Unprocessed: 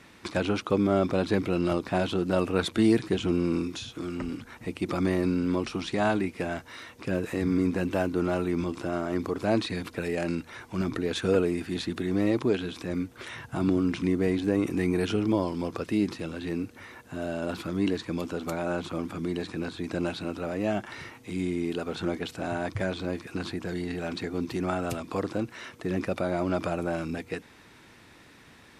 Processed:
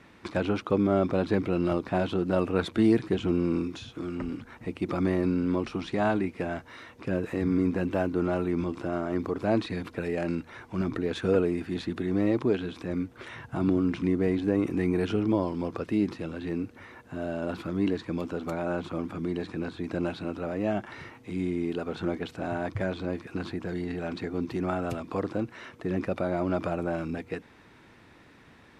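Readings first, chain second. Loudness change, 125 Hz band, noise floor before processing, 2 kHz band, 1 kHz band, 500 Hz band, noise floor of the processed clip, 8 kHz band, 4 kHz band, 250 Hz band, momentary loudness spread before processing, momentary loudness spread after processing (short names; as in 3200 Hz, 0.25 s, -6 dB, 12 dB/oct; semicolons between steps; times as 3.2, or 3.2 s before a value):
-0.5 dB, 0.0 dB, -53 dBFS, -2.0 dB, -0.5 dB, 0.0 dB, -55 dBFS, n/a, -5.5 dB, 0.0 dB, 9 LU, 10 LU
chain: high shelf 3700 Hz -11.5 dB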